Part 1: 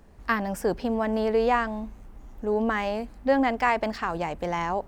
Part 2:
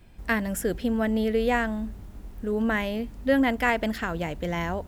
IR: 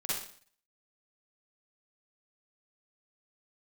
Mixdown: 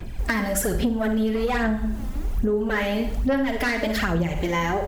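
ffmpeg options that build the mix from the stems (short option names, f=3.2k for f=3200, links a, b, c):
-filter_complex "[0:a]equalizer=f=6.4k:t=o:w=0.35:g=14.5,alimiter=limit=-19dB:level=0:latency=1,volume=-4.5dB,asplit=3[a][b][c];[b]volume=-5.5dB[d];[1:a]aeval=exprs='0.335*sin(PI/2*2*val(0)/0.335)':c=same,aphaser=in_gain=1:out_gain=1:delay=3.9:decay=0.63:speed=1.2:type=sinusoidal,adelay=4.2,volume=0.5dB,asplit=2[e][f];[f]volume=-15dB[g];[c]apad=whole_len=215087[h];[e][h]sidechaincompress=threshold=-35dB:ratio=8:attack=16:release=182[i];[2:a]atrim=start_sample=2205[j];[d][g]amix=inputs=2:normalize=0[k];[k][j]afir=irnorm=-1:irlink=0[l];[a][i][l]amix=inputs=3:normalize=0,acompressor=threshold=-20dB:ratio=6"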